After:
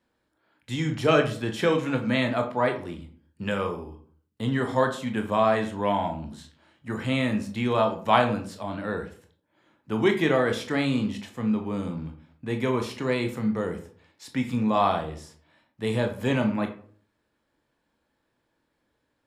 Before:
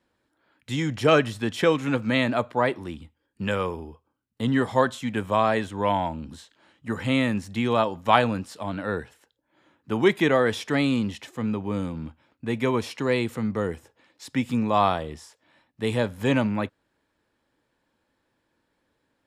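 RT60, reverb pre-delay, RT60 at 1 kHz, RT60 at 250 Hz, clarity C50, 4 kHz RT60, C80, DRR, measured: 0.50 s, 19 ms, 0.45 s, 0.55 s, 11.0 dB, 0.30 s, 15.0 dB, 4.5 dB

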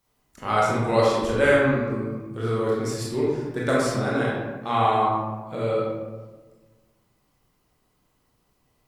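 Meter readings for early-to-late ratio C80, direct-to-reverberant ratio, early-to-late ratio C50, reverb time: 2.0 dB, −6.0 dB, −1.0 dB, 1.3 s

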